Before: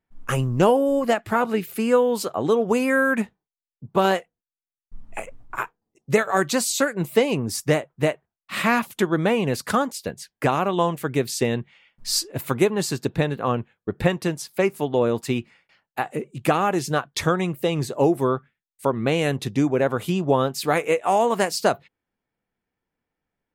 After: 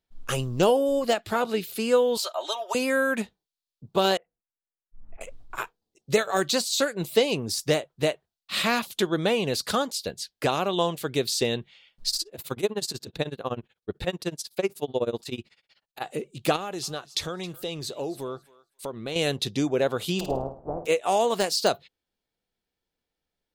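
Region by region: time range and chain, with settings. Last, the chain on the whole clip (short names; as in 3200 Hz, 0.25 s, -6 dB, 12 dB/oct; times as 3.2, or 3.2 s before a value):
2.17–2.75 HPF 640 Hz 24 dB/oct + comb 3.2 ms, depth 94%
4.17–5.21 LPF 2000 Hz 24 dB/oct + auto swell 0.161 s
12.09–16.02 dynamic EQ 4000 Hz, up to -4 dB, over -38 dBFS, Q 0.83 + tremolo 16 Hz, depth 93%
16.56–19.16 compressor 2:1, threshold -32 dBFS + thinning echo 0.268 s, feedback 18%, high-pass 880 Hz, level -18 dB
20.19–20.85 spectral contrast lowered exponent 0.22 + steep low-pass 820 Hz + flutter echo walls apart 9.1 m, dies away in 0.38 s
whole clip: de-esser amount 50%; graphic EQ 125/250/1000/2000/4000 Hz -6/-5/-5/-6/+10 dB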